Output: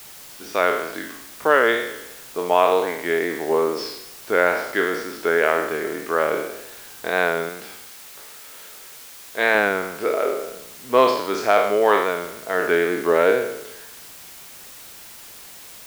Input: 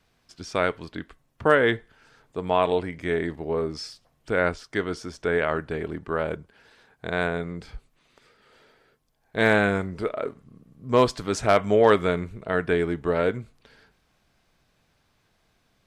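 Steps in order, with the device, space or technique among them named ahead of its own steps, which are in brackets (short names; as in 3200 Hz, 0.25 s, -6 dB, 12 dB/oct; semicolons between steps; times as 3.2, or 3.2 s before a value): spectral trails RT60 0.84 s; dictaphone (BPF 360–3700 Hz; AGC gain up to 9 dB; wow and flutter; white noise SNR 19 dB); 7.49–9.55 low shelf 430 Hz -6.5 dB; gain -1 dB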